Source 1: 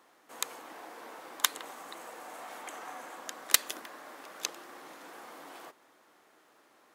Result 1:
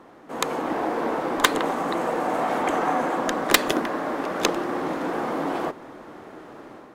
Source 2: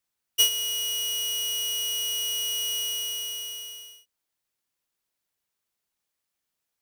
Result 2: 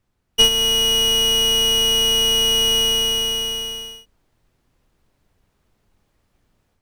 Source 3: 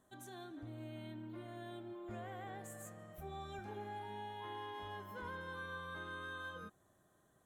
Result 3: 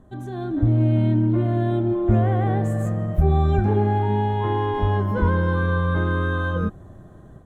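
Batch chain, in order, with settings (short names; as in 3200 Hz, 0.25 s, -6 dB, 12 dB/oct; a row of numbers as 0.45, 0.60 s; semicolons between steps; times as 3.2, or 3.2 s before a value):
tilt -4.5 dB/oct; AGC gain up to 7 dB; hard clip -18.5 dBFS; normalise peaks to -6 dBFS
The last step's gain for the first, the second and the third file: +12.5, +12.5, +12.5 dB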